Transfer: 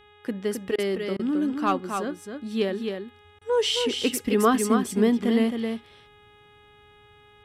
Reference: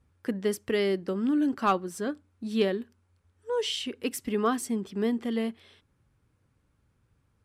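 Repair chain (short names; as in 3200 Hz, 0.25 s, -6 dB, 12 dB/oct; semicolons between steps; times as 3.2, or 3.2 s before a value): de-hum 415.9 Hz, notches 9; interpolate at 0.76/1.17/3.39, 22 ms; inverse comb 0.266 s -5.5 dB; gain correction -6 dB, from 3.14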